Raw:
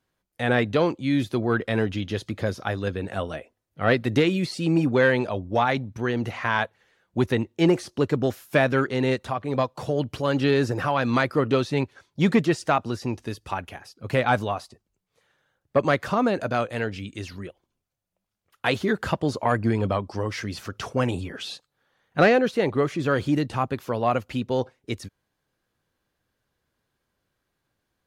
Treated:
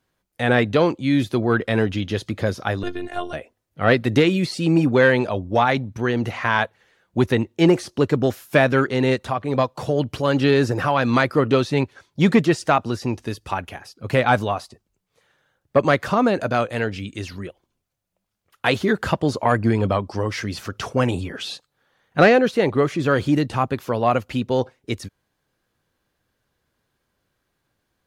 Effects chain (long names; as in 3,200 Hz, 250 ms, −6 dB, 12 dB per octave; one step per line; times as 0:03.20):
0:02.83–0:03.33: phases set to zero 354 Hz
level +4 dB